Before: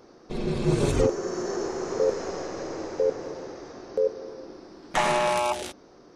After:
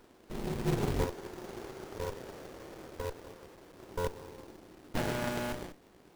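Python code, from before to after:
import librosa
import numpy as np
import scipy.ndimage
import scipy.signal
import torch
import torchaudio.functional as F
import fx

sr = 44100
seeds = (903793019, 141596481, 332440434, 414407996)

y = fx.low_shelf(x, sr, hz=480.0, db=-10.5, at=(1.04, 3.79))
y = fx.quant_companded(y, sr, bits=4)
y = fx.running_max(y, sr, window=33)
y = F.gain(torch.from_numpy(y), -7.5).numpy()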